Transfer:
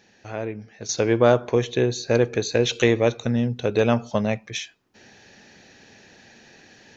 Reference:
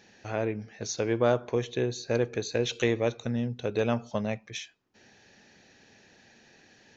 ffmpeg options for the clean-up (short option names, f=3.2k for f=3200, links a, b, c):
-af "asetnsamples=n=441:p=0,asendcmd='0.89 volume volume -7.5dB',volume=0dB"